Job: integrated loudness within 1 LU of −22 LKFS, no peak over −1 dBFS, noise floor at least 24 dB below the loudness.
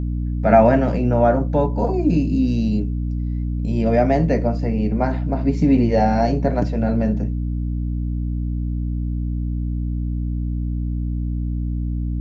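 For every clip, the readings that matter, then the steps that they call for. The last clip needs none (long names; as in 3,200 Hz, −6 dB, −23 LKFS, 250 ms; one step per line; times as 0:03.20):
mains hum 60 Hz; hum harmonics up to 300 Hz; level of the hum −20 dBFS; integrated loudness −20.5 LKFS; sample peak −1.0 dBFS; target loudness −22.0 LKFS
→ mains-hum notches 60/120/180/240/300 Hz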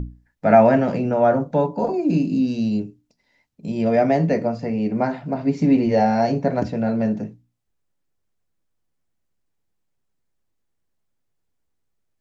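mains hum none found; integrated loudness −20.0 LKFS; sample peak −2.0 dBFS; target loudness −22.0 LKFS
→ level −2 dB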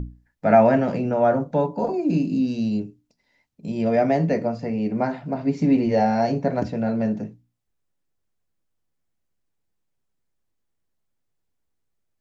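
integrated loudness −22.0 LKFS; sample peak −4.0 dBFS; background noise floor −75 dBFS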